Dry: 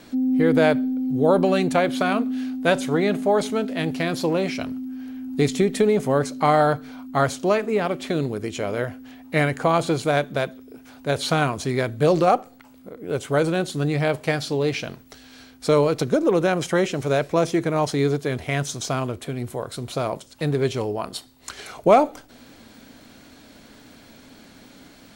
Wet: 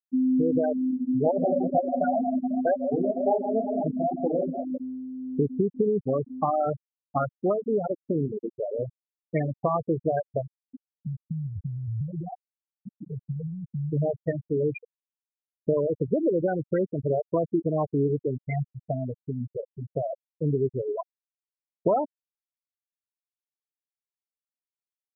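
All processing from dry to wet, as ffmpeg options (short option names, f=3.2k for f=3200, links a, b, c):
-filter_complex "[0:a]asettb=1/sr,asplit=3[a][b][c];[a]atrim=end=0.914[d];[b]atrim=start=0.91:end=4.8,asetpts=PTS-STARTPTS,afade=t=in:d=0.004:c=qsin,afade=t=out:st=3.886:d=0.004:c=qsin,equalizer=f=690:w=2.3:g=10,flanger=delay=15.5:depth=7.9:speed=2.1,aecho=1:1:107|159|365|498:0.168|0.299|0.237|0.251,atrim=end_sample=171549[e];[c]atrim=start=4.796[f];[d][e]acrossfade=d=0.004:c1=hsin:c2=qsin[g];[g][f]acrossfade=d=0.004:c1=qsin:c2=hsin,asettb=1/sr,asplit=3[h][i][j];[h]atrim=end=10.414[k];[i]atrim=start=10.41:end=13.93,asetpts=PTS-STARTPTS,afade=t=in:d=0.004:c=qsin,afade=t=out:st=3.516:d=0.004:c=qsin,bass=f=250:g=15,treble=f=4k:g=6,acompressor=threshold=-26dB:ratio=16:attack=3.2:release=140:knee=1:detection=peak[l];[j]atrim=start=13.926[m];[k][l]acrossfade=d=0.004:c1=hsin:c2=qsin[n];[n][m]acrossfade=d=0.004:c1=qsin:c2=hsin,acompressor=threshold=-20dB:ratio=4,afftfilt=real='re*gte(hypot(re,im),0.251)':imag='im*gte(hypot(re,im),0.251)':win_size=1024:overlap=0.75"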